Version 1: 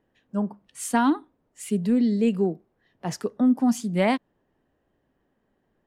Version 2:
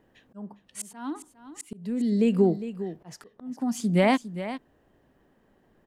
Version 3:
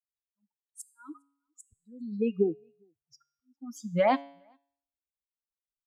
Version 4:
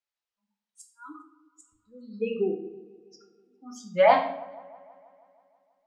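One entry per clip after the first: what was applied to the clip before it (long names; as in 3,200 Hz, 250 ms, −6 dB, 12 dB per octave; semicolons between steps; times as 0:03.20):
downward compressor, threshold −22 dBFS, peak gain reduction 6.5 dB; volume swells 774 ms; single-tap delay 406 ms −12.5 dB; level +7.5 dB
spectral dynamics exaggerated over time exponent 3; parametric band 820 Hz +8.5 dB 2 octaves; tuned comb filter 140 Hz, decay 0.66 s, harmonics all, mix 50%
three-way crossover with the lows and the highs turned down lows −15 dB, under 440 Hz, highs −21 dB, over 6,400 Hz; delay with a low-pass on its return 161 ms, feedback 66%, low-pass 1,400 Hz, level −20.5 dB; convolution reverb RT60 0.65 s, pre-delay 6 ms, DRR 1.5 dB; level +5 dB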